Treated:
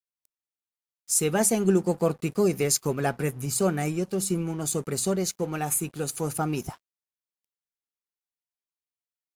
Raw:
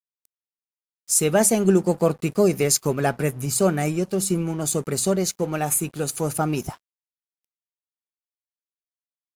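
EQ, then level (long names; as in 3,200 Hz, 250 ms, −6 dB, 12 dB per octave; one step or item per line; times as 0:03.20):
notch filter 610 Hz, Q 12
−4.0 dB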